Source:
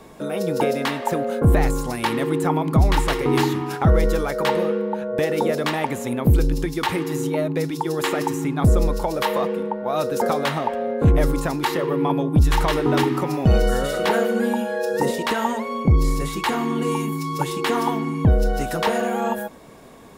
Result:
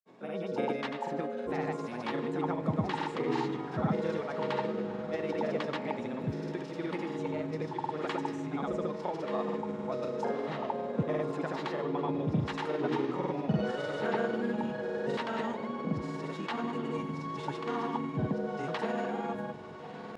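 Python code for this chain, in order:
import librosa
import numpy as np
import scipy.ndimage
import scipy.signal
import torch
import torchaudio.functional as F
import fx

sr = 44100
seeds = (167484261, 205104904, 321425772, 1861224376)

p1 = scipy.signal.sosfilt(scipy.signal.butter(4, 140.0, 'highpass', fs=sr, output='sos'), x)
p2 = fx.air_absorb(p1, sr, metres=130.0)
p3 = fx.comb_fb(p2, sr, f0_hz=210.0, decay_s=1.5, harmonics='all', damping=0.0, mix_pct=70)
p4 = p3 + fx.echo_diffused(p3, sr, ms=1263, feedback_pct=57, wet_db=-11.0, dry=0)
y = fx.granulator(p4, sr, seeds[0], grain_ms=100.0, per_s=20.0, spray_ms=100.0, spread_st=0)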